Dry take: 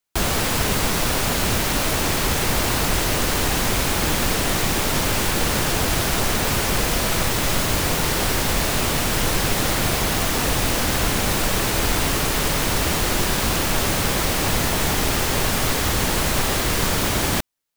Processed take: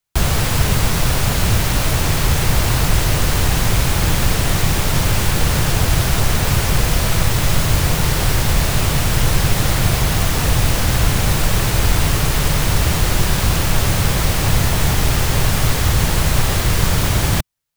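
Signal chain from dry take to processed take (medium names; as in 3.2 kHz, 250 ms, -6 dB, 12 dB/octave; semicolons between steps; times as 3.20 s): resonant low shelf 180 Hz +7.5 dB, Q 1.5; trim +1 dB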